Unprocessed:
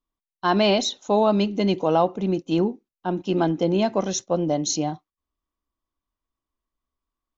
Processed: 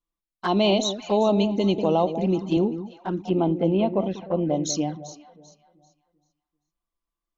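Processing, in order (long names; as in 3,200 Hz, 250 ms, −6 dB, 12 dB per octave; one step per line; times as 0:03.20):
0:03.29–0:04.64: low-pass filter 2,800 Hz 24 dB per octave
delay that swaps between a low-pass and a high-pass 195 ms, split 850 Hz, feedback 53%, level −9.5 dB
flanger swept by the level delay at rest 5.9 ms, full sweep at −18.5 dBFS
0:01.78–0:02.57: multiband upward and downward compressor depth 40%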